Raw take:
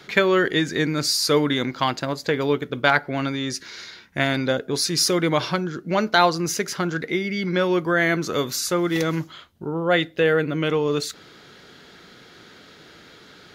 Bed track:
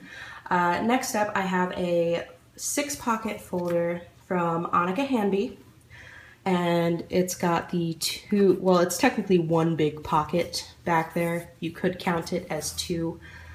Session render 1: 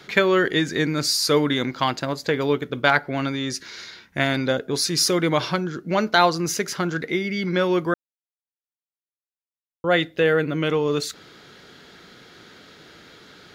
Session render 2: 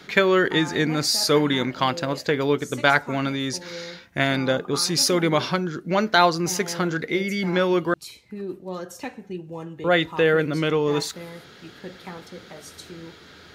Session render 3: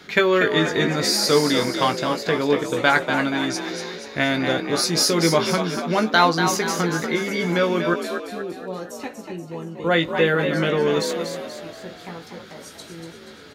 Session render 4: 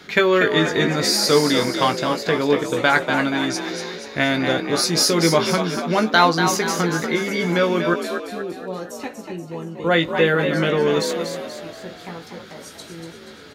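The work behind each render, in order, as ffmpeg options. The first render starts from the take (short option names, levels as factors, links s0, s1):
-filter_complex "[0:a]asplit=3[s0][s1][s2];[s0]atrim=end=7.94,asetpts=PTS-STARTPTS,afade=t=out:st=7.936:d=0.004:c=hsin[s3];[s1]atrim=start=7.94:end=9.84,asetpts=PTS-STARTPTS,volume=0[s4];[s2]atrim=start=9.84,asetpts=PTS-STARTPTS,afade=t=in:d=0.004:c=hsin[s5];[s3][s4][s5]concat=n=3:v=0:a=1"
-filter_complex "[1:a]volume=0.237[s0];[0:a][s0]amix=inputs=2:normalize=0"
-filter_complex "[0:a]asplit=2[s0][s1];[s1]adelay=18,volume=0.422[s2];[s0][s2]amix=inputs=2:normalize=0,asplit=7[s3][s4][s5][s6][s7][s8][s9];[s4]adelay=239,afreqshift=52,volume=0.447[s10];[s5]adelay=478,afreqshift=104,volume=0.232[s11];[s6]adelay=717,afreqshift=156,volume=0.12[s12];[s7]adelay=956,afreqshift=208,volume=0.0631[s13];[s8]adelay=1195,afreqshift=260,volume=0.0327[s14];[s9]adelay=1434,afreqshift=312,volume=0.017[s15];[s3][s10][s11][s12][s13][s14][s15]amix=inputs=7:normalize=0"
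-af "volume=1.19,alimiter=limit=0.794:level=0:latency=1"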